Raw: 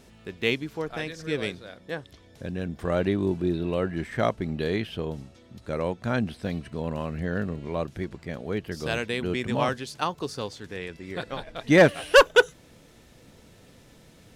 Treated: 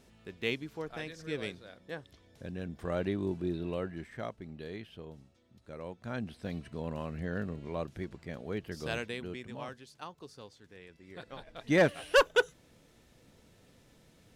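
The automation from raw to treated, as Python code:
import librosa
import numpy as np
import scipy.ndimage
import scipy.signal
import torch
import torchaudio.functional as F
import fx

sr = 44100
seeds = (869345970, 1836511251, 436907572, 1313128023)

y = fx.gain(x, sr, db=fx.line((3.72, -8.0), (4.28, -15.5), (5.76, -15.5), (6.59, -7.0), (8.98, -7.0), (9.54, -17.0), (10.83, -17.0), (11.71, -8.5)))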